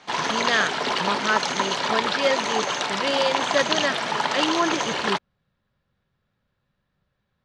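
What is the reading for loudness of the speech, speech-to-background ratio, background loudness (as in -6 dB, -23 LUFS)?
-26.5 LUFS, -2.5 dB, -24.0 LUFS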